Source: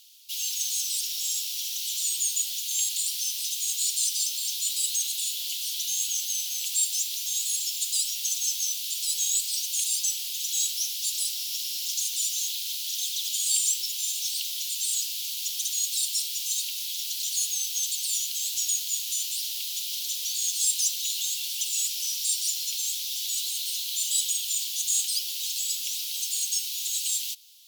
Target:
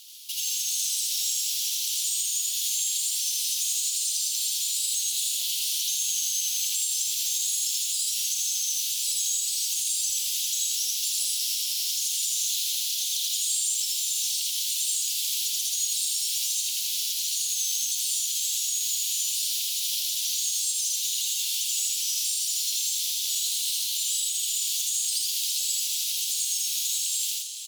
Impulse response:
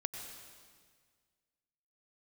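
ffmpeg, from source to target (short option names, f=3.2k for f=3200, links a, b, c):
-filter_complex "[0:a]acompressor=threshold=-28dB:ratio=6,alimiter=level_in=2.5dB:limit=-24dB:level=0:latency=1:release=210,volume=-2.5dB,aecho=1:1:81.63|134.1:0.891|0.316,asplit=2[a][b];[1:a]atrim=start_sample=2205,asetrate=23373,aresample=44100,highshelf=f=5.5k:g=7[c];[b][c]afir=irnorm=-1:irlink=0,volume=-5dB[d];[a][d]amix=inputs=2:normalize=0"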